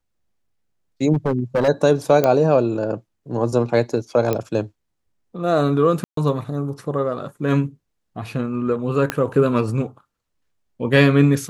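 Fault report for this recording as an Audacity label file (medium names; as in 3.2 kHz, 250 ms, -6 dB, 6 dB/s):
1.130000	1.690000	clipped -14.5 dBFS
2.240000	2.240000	pop -5 dBFS
4.330000	4.330000	pop -8 dBFS
6.040000	6.170000	dropout 133 ms
9.100000	9.100000	pop -6 dBFS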